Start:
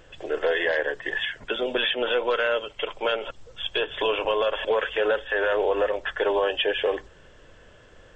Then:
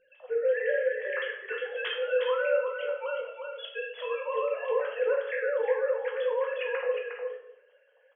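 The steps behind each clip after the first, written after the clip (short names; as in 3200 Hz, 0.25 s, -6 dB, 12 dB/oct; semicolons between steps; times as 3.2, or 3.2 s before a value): sine-wave speech; echo 0.359 s -6 dB; shoebox room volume 180 m³, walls mixed, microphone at 0.97 m; gain -9 dB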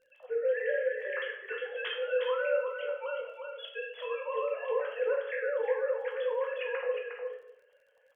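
crackle 27/s -55 dBFS; gain -3 dB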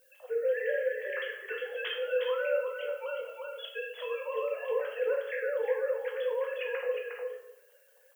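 dynamic EQ 990 Hz, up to -5 dB, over -43 dBFS, Q 1.1; added noise violet -68 dBFS; gain +1.5 dB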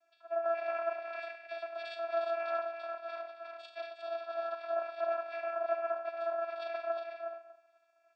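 frequency shift +350 Hz; vocoder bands 8, saw 335 Hz; notch comb 500 Hz; gain -3 dB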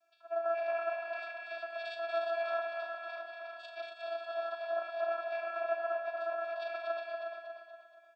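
HPF 310 Hz 6 dB/oct; notch 2000 Hz, Q 9; on a send: feedback echo 0.237 s, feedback 50%, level -5 dB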